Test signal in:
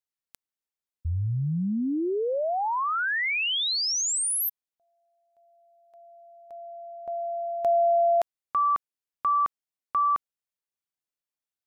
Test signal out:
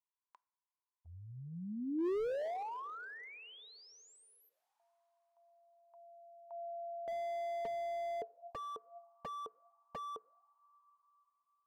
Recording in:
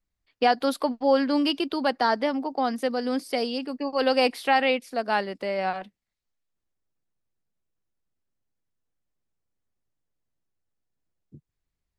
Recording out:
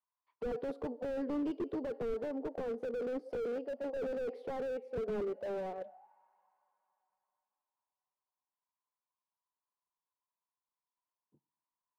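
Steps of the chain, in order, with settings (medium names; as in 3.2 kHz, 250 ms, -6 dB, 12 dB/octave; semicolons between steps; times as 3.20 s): two-slope reverb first 0.57 s, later 3.8 s, from -21 dB, DRR 19.5 dB; auto-wah 440–1000 Hz, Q 13, down, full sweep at -24.5 dBFS; slew-rate limiter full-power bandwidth 2.4 Hz; trim +11 dB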